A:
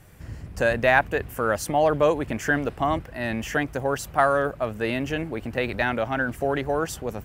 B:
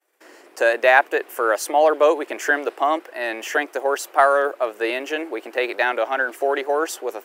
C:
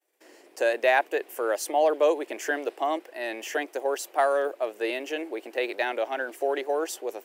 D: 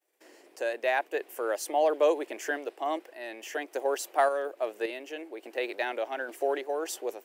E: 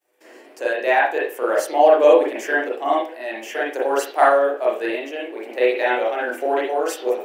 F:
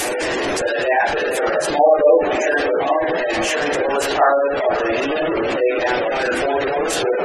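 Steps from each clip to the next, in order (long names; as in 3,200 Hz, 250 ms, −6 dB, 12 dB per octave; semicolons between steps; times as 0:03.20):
downward expander −39 dBFS; elliptic high-pass filter 340 Hz, stop band 60 dB; level +5 dB
parametric band 1,300 Hz −8.5 dB 0.93 octaves; level −4.5 dB
sample-and-hold tremolo; level −1 dB
convolution reverb, pre-delay 32 ms, DRR −6 dB; level +4 dB
linear delta modulator 64 kbit/s, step −14 dBFS; feedback delay with all-pass diffusion 517 ms, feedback 51%, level −9 dB; gate on every frequency bin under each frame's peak −20 dB strong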